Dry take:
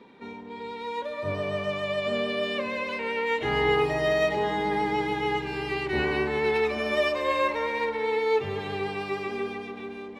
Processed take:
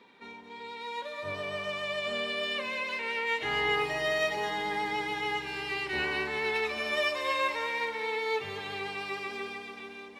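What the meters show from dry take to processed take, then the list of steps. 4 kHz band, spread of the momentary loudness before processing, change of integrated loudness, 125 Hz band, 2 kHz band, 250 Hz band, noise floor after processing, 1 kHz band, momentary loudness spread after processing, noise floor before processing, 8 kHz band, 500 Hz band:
+0.5 dB, 10 LU, -4.0 dB, -11.5 dB, -0.5 dB, -10.5 dB, -46 dBFS, -4.5 dB, 10 LU, -40 dBFS, n/a, -8.0 dB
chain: tilt shelf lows -6.5 dB, about 770 Hz; on a send: thin delay 0.216 s, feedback 50%, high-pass 4600 Hz, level -5 dB; on the sum: gain -5.5 dB

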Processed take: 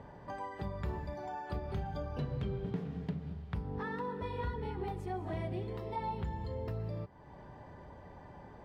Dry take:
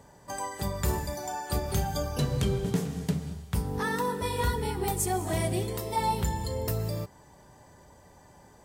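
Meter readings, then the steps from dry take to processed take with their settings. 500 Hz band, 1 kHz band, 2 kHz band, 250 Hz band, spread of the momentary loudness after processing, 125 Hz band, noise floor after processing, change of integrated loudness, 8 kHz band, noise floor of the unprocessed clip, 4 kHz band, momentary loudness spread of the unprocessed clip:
-8.5 dB, -9.0 dB, -10.5 dB, -8.0 dB, 15 LU, -8.0 dB, -53 dBFS, -9.0 dB, under -30 dB, -56 dBFS, -17.0 dB, 6 LU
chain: compressor 2:1, threshold -49 dBFS, peak gain reduction 14.5 dB; air absorption 360 m; gain +4.5 dB

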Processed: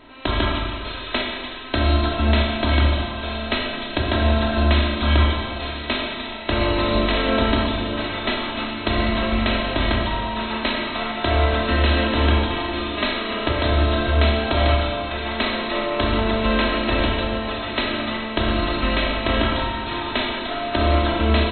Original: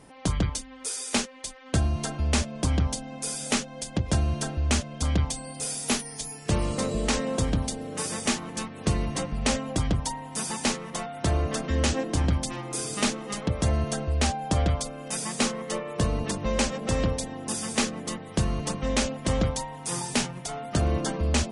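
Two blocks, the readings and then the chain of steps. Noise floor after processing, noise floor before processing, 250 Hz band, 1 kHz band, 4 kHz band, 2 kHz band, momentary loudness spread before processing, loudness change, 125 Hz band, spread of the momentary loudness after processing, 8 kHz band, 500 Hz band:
-31 dBFS, -43 dBFS, +6.0 dB, +9.5 dB, +9.0 dB, +11.0 dB, 6 LU, +6.5 dB, +5.0 dB, 7 LU, under -40 dB, +8.0 dB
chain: spectral contrast lowered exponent 0.6; comb 3.1 ms, depth 88%; compressor, threshold -21 dBFS, peak gain reduction 5.5 dB; vibrato 1 Hz 14 cents; brick-wall FIR low-pass 4200 Hz; Schroeder reverb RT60 2 s, combs from 28 ms, DRR -0.5 dB; gain +4 dB

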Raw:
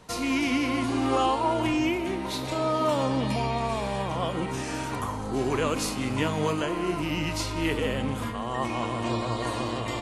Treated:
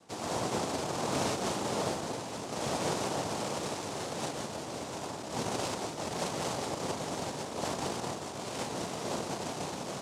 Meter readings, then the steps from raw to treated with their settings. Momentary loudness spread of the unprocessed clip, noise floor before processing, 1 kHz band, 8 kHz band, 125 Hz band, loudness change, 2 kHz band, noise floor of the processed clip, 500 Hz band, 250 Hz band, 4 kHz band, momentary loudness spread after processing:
6 LU, -33 dBFS, -7.0 dB, +1.0 dB, -9.5 dB, -7.5 dB, -8.5 dB, -41 dBFS, -6.5 dB, -10.5 dB, -4.5 dB, 6 LU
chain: sample sorter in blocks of 256 samples; noise vocoder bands 2; gain -7.5 dB

